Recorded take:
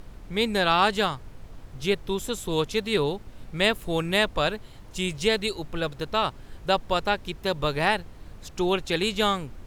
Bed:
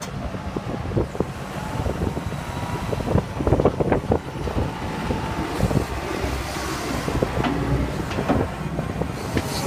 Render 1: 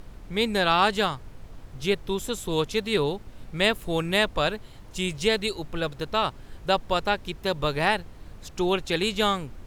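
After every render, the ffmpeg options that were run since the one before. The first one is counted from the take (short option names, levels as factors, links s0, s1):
-af anull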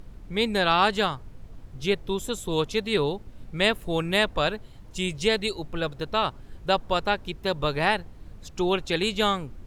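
-af "afftdn=nr=6:nf=-46"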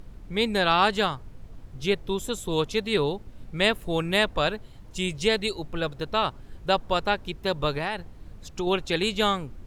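-filter_complex "[0:a]asettb=1/sr,asplit=3[s0][s1][s2];[s0]atrim=end=7.704[s3];[s1]atrim=start=7.7:end=8.67,asetpts=PTS-STARTPTS,afade=t=in:d=0.004:c=qsin,afade=t=out:st=0.966:d=0.004:c=qsin,acompressor=threshold=0.0631:ratio=5:attack=3.2:release=140:knee=1:detection=peak[s4];[s2]atrim=start=8.666[s5];[s3][s4]acrossfade=d=0.004:c1=hsin:c2=qsin[s6];[s6][s5]acrossfade=d=0.004:c1=qsin:c2=hsin"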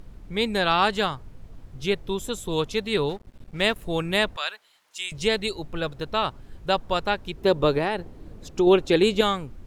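-filter_complex "[0:a]asettb=1/sr,asplit=3[s0][s1][s2];[s0]atrim=end=3.094[s3];[s1]atrim=start=3.09:end=3.78,asetpts=PTS-STARTPTS,afade=t=in:d=0.004:c=qsin,afade=t=out:st=0.686:d=0.004:c=qsin,aeval=exprs='sgn(val(0))*max(abs(val(0))-0.00562,0)':c=same[s4];[s2]atrim=start=3.776[s5];[s3][s4]acrossfade=d=0.004:c1=hsin:c2=qsin[s6];[s6][s5]acrossfade=d=0.004:c1=qsin:c2=hsin,asettb=1/sr,asplit=3[s7][s8][s9];[s7]atrim=end=4.364[s10];[s8]atrim=start=4.36:end=5.12,asetpts=PTS-STARTPTS,afade=t=in:d=0.004:c=qsin,afade=t=out:st=0.756:d=0.004:c=qsin,highpass=1300[s11];[s9]atrim=start=5.116[s12];[s10][s11]acrossfade=d=0.004:c1=hsin:c2=qsin[s13];[s13][s12]acrossfade=d=0.004:c1=qsin:c2=hsin,asettb=1/sr,asplit=3[s14][s15][s16];[s14]atrim=end=7.374[s17];[s15]atrim=start=7.37:end=9.21,asetpts=PTS-STARTPTS,afade=t=in:d=0.004:c=qsin,afade=t=out:st=1.836:d=0.004:c=qsin,equalizer=f=370:t=o:w=1.8:g=9.5[s18];[s16]atrim=start=9.206[s19];[s17][s18]acrossfade=d=0.004:c1=hsin:c2=qsin[s20];[s20][s19]acrossfade=d=0.004:c1=qsin:c2=hsin"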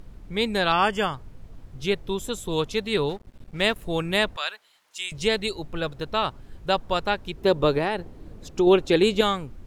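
-filter_complex "[0:a]asettb=1/sr,asplit=3[s0][s1][s2];[s0]atrim=end=0.724[s3];[s1]atrim=start=0.72:end=1.14,asetpts=PTS-STARTPTS,afade=t=in:d=0.004:c=qsin,afade=t=out:st=0.416:d=0.004:c=qsin,asuperstop=centerf=4000:order=20:qfactor=4[s4];[s2]atrim=start=1.136[s5];[s3][s4]acrossfade=d=0.004:c1=hsin:c2=qsin[s6];[s6][s5]acrossfade=d=0.004:c1=qsin:c2=hsin"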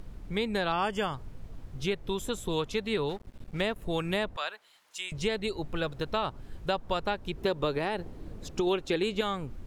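-filter_complex "[0:a]acrossover=split=1100|2600[s0][s1][s2];[s0]acompressor=threshold=0.0398:ratio=4[s3];[s1]acompressor=threshold=0.0126:ratio=4[s4];[s2]acompressor=threshold=0.00891:ratio=4[s5];[s3][s4][s5]amix=inputs=3:normalize=0"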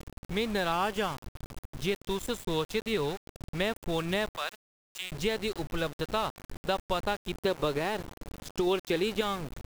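-af "aeval=exprs='val(0)*gte(abs(val(0)),0.0141)':c=same"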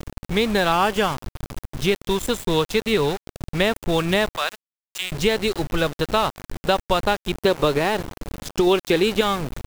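-af "volume=3.16"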